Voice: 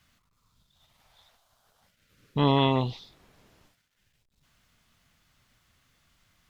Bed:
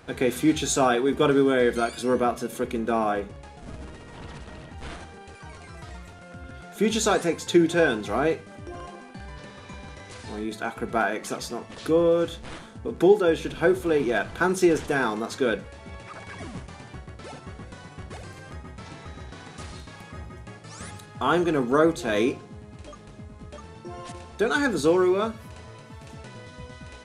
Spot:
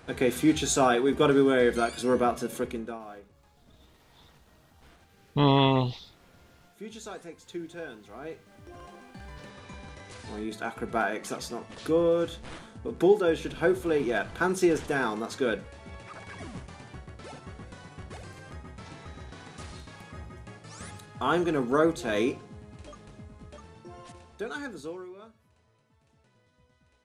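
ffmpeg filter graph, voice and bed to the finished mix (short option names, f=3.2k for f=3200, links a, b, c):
-filter_complex "[0:a]adelay=3000,volume=1dB[a];[1:a]volume=14dB,afade=t=out:st=2.55:d=0.44:silence=0.133352,afade=t=in:st=8.19:d=1.21:silence=0.16788,afade=t=out:st=23.07:d=2.02:silence=0.1[b];[a][b]amix=inputs=2:normalize=0"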